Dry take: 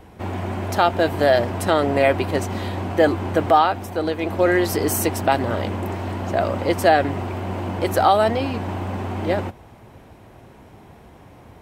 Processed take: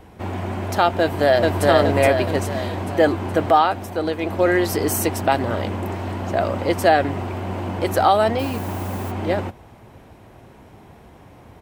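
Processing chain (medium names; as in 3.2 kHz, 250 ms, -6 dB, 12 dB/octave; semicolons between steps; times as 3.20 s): 1.00–1.65 s: echo throw 420 ms, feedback 50%, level -1 dB; 8.38–9.10 s: added noise blue -42 dBFS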